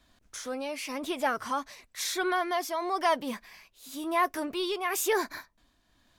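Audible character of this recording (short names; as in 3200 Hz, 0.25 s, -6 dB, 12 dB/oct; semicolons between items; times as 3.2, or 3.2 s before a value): tremolo triangle 0.99 Hz, depth 60%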